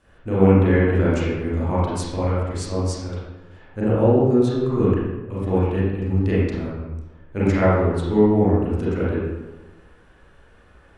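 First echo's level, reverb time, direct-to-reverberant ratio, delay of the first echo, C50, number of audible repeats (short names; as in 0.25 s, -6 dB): none, 1.2 s, -9.5 dB, none, -3.0 dB, none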